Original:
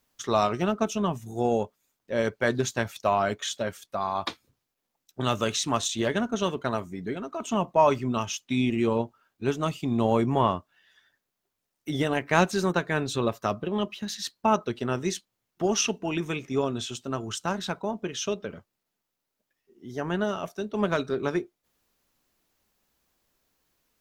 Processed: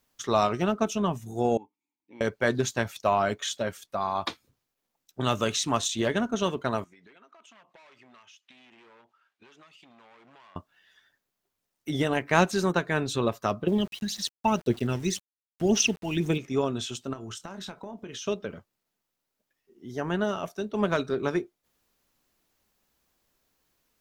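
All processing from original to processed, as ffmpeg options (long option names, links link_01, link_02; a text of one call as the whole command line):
ffmpeg -i in.wav -filter_complex "[0:a]asettb=1/sr,asplit=3[link_01][link_02][link_03];[link_01]atrim=end=1.574[link_04];[link_02]atrim=start=1.57:end=2.21,asetpts=PTS-STARTPTS,afade=type=in:duration=0.004:curve=qsin,afade=type=out:start_time=0.636:duration=0.004:curve=qsin,bass=frequency=250:gain=3,treble=frequency=4000:gain=8,acompressor=threshold=-31dB:ratio=2:attack=3.2:release=140:knee=1:detection=peak,asplit=3[link_05][link_06][link_07];[link_05]bandpass=frequency=300:width_type=q:width=8,volume=0dB[link_08];[link_06]bandpass=frequency=870:width_type=q:width=8,volume=-6dB[link_09];[link_07]bandpass=frequency=2240:width_type=q:width=8,volume=-9dB[link_10];[link_08][link_09][link_10]amix=inputs=3:normalize=0[link_11];[link_03]atrim=start=2.206[link_12];[link_04][link_11]acrossfade=duration=0.004:curve1=hsin:curve2=qsin[link_13];[link_13][link_12]acrossfade=duration=0.004:curve1=qsin:curve2=hsin,asettb=1/sr,asplit=3[link_14][link_15][link_16];[link_14]atrim=end=6.844[link_17];[link_15]atrim=start=6.84:end=10.56,asetpts=PTS-STARTPTS,afade=type=in:duration=0.004:curve=qsin,afade=type=out:start_time=3.716:duration=0.004:curve=qsin,asoftclip=type=hard:threshold=-26dB,bandpass=frequency=2200:width_type=q:width=0.79,acompressor=threshold=-51dB:ratio=10:attack=3.2:release=140:knee=1:detection=peak[link_18];[link_16]atrim=start=10.556[link_19];[link_17][link_18]acrossfade=duration=0.004:curve1=hsin:curve2=qsin[link_20];[link_20][link_19]acrossfade=duration=0.004:curve1=qsin:curve2=hsin,asettb=1/sr,asplit=3[link_21][link_22][link_23];[link_21]atrim=end=13.674[link_24];[link_22]atrim=start=13.67:end=16.38,asetpts=PTS-STARTPTS,afade=type=in:duration=0.004:curve=qsin,afade=type=out:start_time=2.706:duration=0.004:curve=qsin,equalizer=frequency=1200:width_type=o:width=0.69:gain=-12.5,aphaser=in_gain=1:out_gain=1:delay=1.1:decay=0.57:speed=1.9:type=triangular,aeval=exprs='val(0)*gte(abs(val(0)),0.00631)':channel_layout=same[link_25];[link_23]atrim=start=16.376[link_26];[link_24][link_25]acrossfade=duration=0.004:curve1=hsin:curve2=qsin[link_27];[link_27][link_26]acrossfade=duration=0.004:curve1=qsin:curve2=hsin,asettb=1/sr,asplit=3[link_28][link_29][link_30];[link_28]atrim=end=17.134[link_31];[link_29]atrim=start=17.13:end=18.27,asetpts=PTS-STARTPTS,afade=type=in:duration=0.004:curve=qsin,afade=type=out:start_time=1.136:duration=0.004:curve=qsin,acompressor=threshold=-35dB:ratio=12:attack=3.2:release=140:knee=1:detection=peak,asplit=2[link_32][link_33];[link_33]adelay=26,volume=-12dB[link_34];[link_32][link_34]amix=inputs=2:normalize=0,atrim=end_sample=50274[link_35];[link_30]atrim=start=18.266[link_36];[link_31][link_35]acrossfade=duration=0.004:curve1=hsin:curve2=qsin[link_37];[link_37][link_36]acrossfade=duration=0.004:curve1=qsin:curve2=hsin" out.wav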